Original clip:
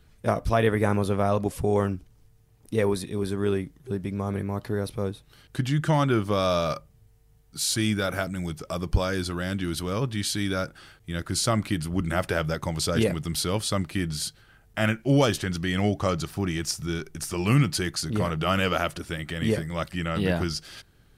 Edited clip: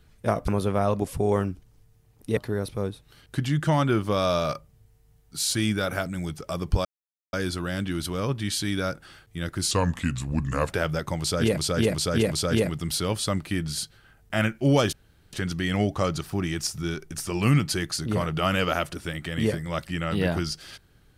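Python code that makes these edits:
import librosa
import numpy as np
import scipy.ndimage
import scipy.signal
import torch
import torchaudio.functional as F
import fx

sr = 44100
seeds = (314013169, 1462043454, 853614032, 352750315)

y = fx.edit(x, sr, fx.cut(start_s=0.48, length_s=0.44),
    fx.cut(start_s=2.81, length_s=1.77),
    fx.insert_silence(at_s=9.06, length_s=0.48),
    fx.speed_span(start_s=11.44, length_s=0.81, speed=0.82),
    fx.repeat(start_s=12.76, length_s=0.37, count=4),
    fx.insert_room_tone(at_s=15.37, length_s=0.4), tone=tone)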